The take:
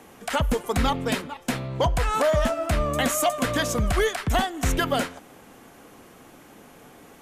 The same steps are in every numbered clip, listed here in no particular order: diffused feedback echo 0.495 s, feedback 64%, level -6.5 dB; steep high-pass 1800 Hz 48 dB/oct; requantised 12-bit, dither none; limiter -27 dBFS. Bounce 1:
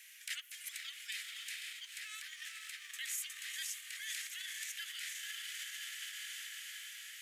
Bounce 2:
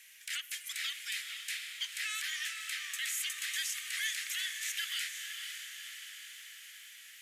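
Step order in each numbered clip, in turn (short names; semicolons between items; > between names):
diffused feedback echo > limiter > requantised > steep high-pass; steep high-pass > limiter > requantised > diffused feedback echo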